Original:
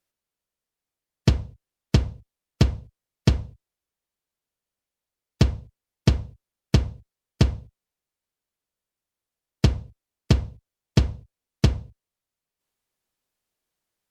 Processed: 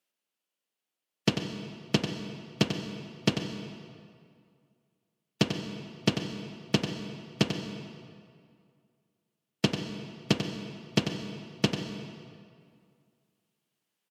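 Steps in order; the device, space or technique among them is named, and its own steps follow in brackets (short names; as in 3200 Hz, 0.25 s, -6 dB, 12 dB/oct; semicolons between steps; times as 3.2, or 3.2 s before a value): PA in a hall (HPF 170 Hz 24 dB/oct; bell 2900 Hz +7 dB 0.46 oct; echo 93 ms -9 dB; reverb RT60 2.2 s, pre-delay 0.12 s, DRR 8 dB); gain -2 dB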